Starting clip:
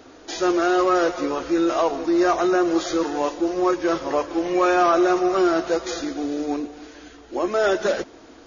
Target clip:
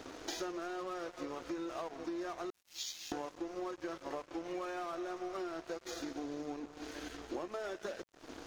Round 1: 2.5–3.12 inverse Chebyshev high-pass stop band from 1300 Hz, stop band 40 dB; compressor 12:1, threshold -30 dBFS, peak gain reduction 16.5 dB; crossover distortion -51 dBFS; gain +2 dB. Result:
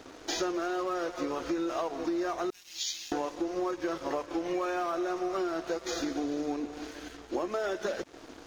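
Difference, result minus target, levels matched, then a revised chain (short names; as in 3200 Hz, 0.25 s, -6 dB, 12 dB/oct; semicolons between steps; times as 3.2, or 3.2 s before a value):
compressor: peak gain reduction -8 dB
2.5–3.12 inverse Chebyshev high-pass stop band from 1300 Hz, stop band 40 dB; compressor 12:1, threshold -38.5 dBFS, peak gain reduction 24 dB; crossover distortion -51 dBFS; gain +2 dB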